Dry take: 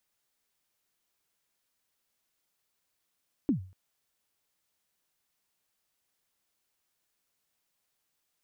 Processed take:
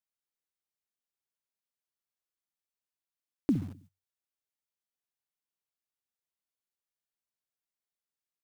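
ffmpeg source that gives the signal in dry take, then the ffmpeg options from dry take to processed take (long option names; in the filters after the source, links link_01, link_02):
-f lavfi -i "aevalsrc='0.106*pow(10,-3*t/0.4)*sin(2*PI*(320*0.11/log(93/320)*(exp(log(93/320)*min(t,0.11)/0.11)-1)+93*max(t-0.11,0)))':duration=0.24:sample_rate=44100"
-filter_complex "[0:a]asplit=2[link_01][link_02];[link_02]adelay=64,lowpass=frequency=820:poles=1,volume=-10.5dB,asplit=2[link_03][link_04];[link_04]adelay=64,lowpass=frequency=820:poles=1,volume=0.49,asplit=2[link_05][link_06];[link_06]adelay=64,lowpass=frequency=820:poles=1,volume=0.49,asplit=2[link_07][link_08];[link_08]adelay=64,lowpass=frequency=820:poles=1,volume=0.49,asplit=2[link_09][link_10];[link_10]adelay=64,lowpass=frequency=820:poles=1,volume=0.49[link_11];[link_01][link_03][link_05][link_07][link_09][link_11]amix=inputs=6:normalize=0,asplit=2[link_12][link_13];[link_13]acrusher=bits=6:mix=0:aa=0.000001,volume=-11dB[link_14];[link_12][link_14]amix=inputs=2:normalize=0,agate=range=-17dB:threshold=-56dB:ratio=16:detection=peak"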